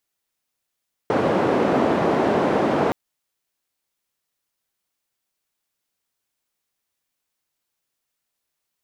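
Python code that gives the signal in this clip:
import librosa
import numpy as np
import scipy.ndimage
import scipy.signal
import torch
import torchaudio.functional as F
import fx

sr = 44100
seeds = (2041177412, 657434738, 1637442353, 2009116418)

y = fx.band_noise(sr, seeds[0], length_s=1.82, low_hz=200.0, high_hz=570.0, level_db=-19.5)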